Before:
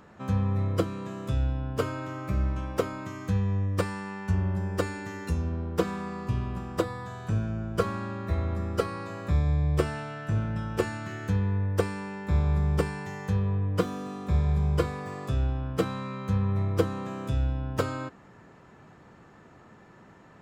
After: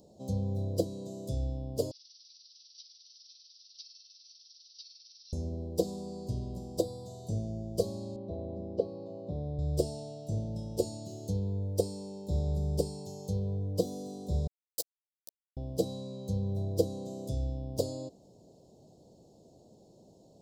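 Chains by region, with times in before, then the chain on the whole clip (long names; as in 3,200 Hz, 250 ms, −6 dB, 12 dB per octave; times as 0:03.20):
0:01.91–0:05.33: linear delta modulator 64 kbit/s, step −39 dBFS + amplitude modulation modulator 20 Hz, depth 40% + linear-phase brick-wall band-pass 1,700–6,000 Hz
0:08.16–0:09.59: band-pass filter 130–2,100 Hz + high-frequency loss of the air 59 metres
0:14.47–0:15.57: first difference + notch filter 1,200 Hz, Q 17 + log-companded quantiser 2 bits
whole clip: Chebyshev band-stop filter 630–4,400 Hz, order 3; low-shelf EQ 400 Hz −10 dB; level +3 dB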